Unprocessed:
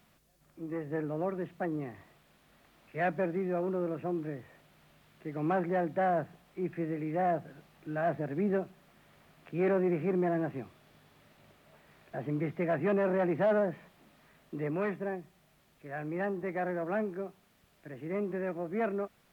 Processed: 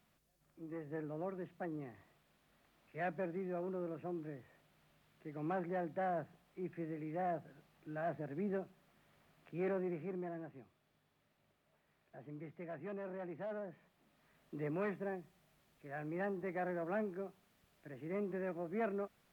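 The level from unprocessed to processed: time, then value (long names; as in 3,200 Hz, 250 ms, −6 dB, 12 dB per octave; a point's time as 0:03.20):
0:09.66 −9 dB
0:10.51 −16.5 dB
0:13.62 −16.5 dB
0:14.64 −6 dB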